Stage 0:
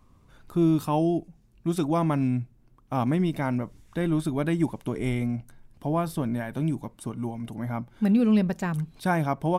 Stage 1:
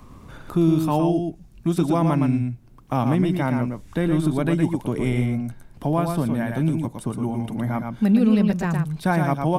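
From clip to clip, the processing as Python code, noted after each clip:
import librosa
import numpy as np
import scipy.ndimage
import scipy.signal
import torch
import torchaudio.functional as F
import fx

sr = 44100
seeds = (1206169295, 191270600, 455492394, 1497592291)

y = fx.low_shelf(x, sr, hz=150.0, db=3.5)
y = y + 10.0 ** (-5.5 / 20.0) * np.pad(y, (int(114 * sr / 1000.0), 0))[:len(y)]
y = fx.band_squash(y, sr, depth_pct=40)
y = F.gain(torch.from_numpy(y), 2.5).numpy()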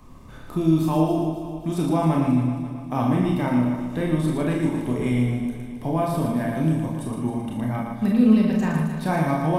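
y = fx.notch(x, sr, hz=1400.0, q=12.0)
y = fx.echo_feedback(y, sr, ms=268, feedback_pct=49, wet_db=-10.5)
y = fx.rev_schroeder(y, sr, rt60_s=0.33, comb_ms=25, drr_db=0.0)
y = F.gain(torch.from_numpy(y), -4.0).numpy()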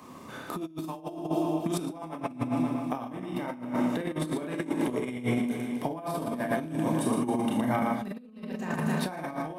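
y = scipy.signal.sosfilt(scipy.signal.butter(2, 240.0, 'highpass', fs=sr, output='sos'), x)
y = fx.over_compress(y, sr, threshold_db=-30.0, ratio=-0.5)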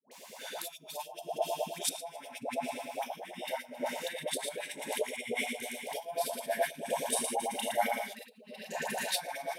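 y = fx.fixed_phaser(x, sr, hz=320.0, stages=6)
y = fx.filter_lfo_highpass(y, sr, shape='sine', hz=9.4, low_hz=580.0, high_hz=3200.0, q=0.76)
y = fx.dispersion(y, sr, late='highs', ms=116.0, hz=720.0)
y = F.gain(torch.from_numpy(y), 8.0).numpy()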